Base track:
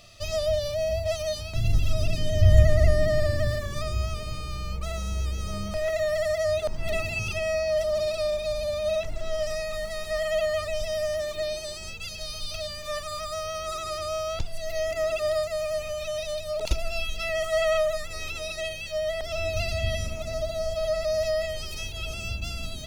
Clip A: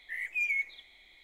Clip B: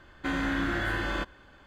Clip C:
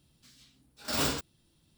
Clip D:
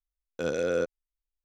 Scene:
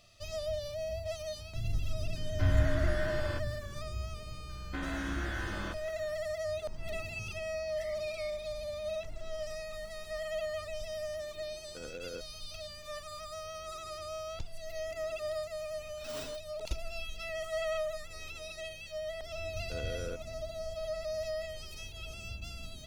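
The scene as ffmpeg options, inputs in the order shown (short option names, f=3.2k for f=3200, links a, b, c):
-filter_complex "[2:a]asplit=2[a][b];[4:a]asplit=2[c][d];[0:a]volume=-10.5dB[e];[1:a]acompressor=threshold=-34dB:ratio=6:attack=3.2:release=140:knee=1:detection=peak[f];[c]tremolo=f=10:d=0.36[g];[a]atrim=end=1.66,asetpts=PTS-STARTPTS,volume=-9.5dB,afade=t=in:d=0.004:c=hsin,afade=t=out:st=1.656:d=0.004:c=hsin,adelay=2150[h];[b]atrim=end=1.66,asetpts=PTS-STARTPTS,volume=-8.5dB,afade=t=in:d=0.004:c=hsin,afade=t=out:st=1.656:d=0.004:c=hsin,adelay=198009S[i];[f]atrim=end=1.23,asetpts=PTS-STARTPTS,volume=-12.5dB,afade=t=in:d=0.004:c=hsin,afade=t=out:st=1.226:d=0.004:c=hsin,adelay=7680[j];[g]atrim=end=1.44,asetpts=PTS-STARTPTS,volume=-14.5dB,afade=t=in:d=0.004:c=hsin,afade=t=out:st=1.436:d=0.004:c=hsin,adelay=11360[k];[3:a]atrim=end=1.77,asetpts=PTS-STARTPTS,volume=-16dB,afade=t=in:d=0.004:c=hsin,afade=t=out:st=1.766:d=0.004:c=hsin,adelay=15160[l];[d]atrim=end=1.44,asetpts=PTS-STARTPTS,volume=-13.5dB,afade=t=in:d=0.004:c=hsin,afade=t=out:st=1.436:d=0.004:c=hsin,adelay=19310[m];[e][h][i][j][k][l][m]amix=inputs=7:normalize=0"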